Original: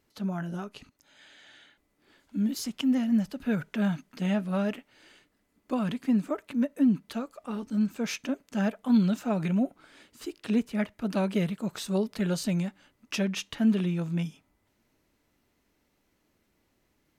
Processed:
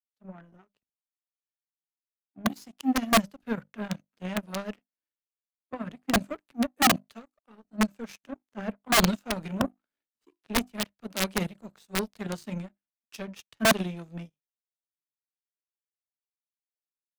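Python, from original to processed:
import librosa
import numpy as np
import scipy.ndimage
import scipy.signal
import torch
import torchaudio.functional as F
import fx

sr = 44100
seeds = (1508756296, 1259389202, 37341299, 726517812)

y = fx.hum_notches(x, sr, base_hz=50, count=7)
y = fx.power_curve(y, sr, exponent=2.0)
y = (np.mod(10.0 ** (23.5 / 20.0) * y + 1.0, 2.0) - 1.0) / 10.0 ** (23.5 / 20.0)
y = fx.band_widen(y, sr, depth_pct=70)
y = y * librosa.db_to_amplitude(6.0)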